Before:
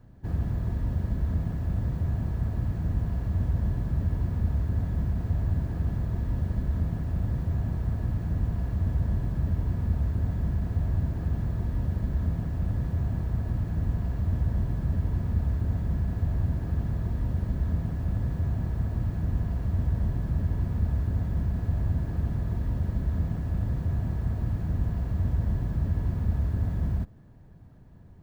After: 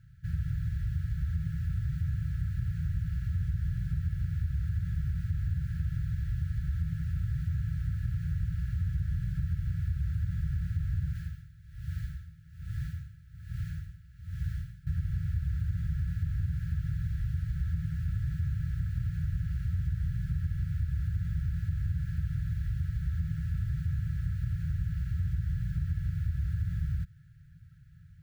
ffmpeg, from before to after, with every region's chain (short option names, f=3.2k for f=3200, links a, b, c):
-filter_complex "[0:a]asettb=1/sr,asplit=3[a][b][c];[a]atrim=end=11.154[d];[b]atrim=start=11.15:end=14.87,asetpts=PTS-STARTPTS,afade=t=in:d=0.004:c=qsin,afade=t=out:st=3.716:d=0.004:c=qsin,tiltshelf=f=1.2k:g=-3.5,aeval=exprs='val(0)*pow(10,-19*(0.5-0.5*cos(2*PI*1.2*n/s))/20)':c=same[e];[c]atrim=start=14.866[f];[d][e]acrossfade=d=0.004:c1=hsin:c2=qsin[g];[g][f]acrossfade=d=0.004:c1=qsin:c2=hsin,highpass=f=60:p=1,afftfilt=real='re*(1-between(b*sr/4096,180,1300))':imag='im*(1-between(b*sr/4096,180,1300))':win_size=4096:overlap=0.75,acompressor=threshold=-26dB:ratio=6"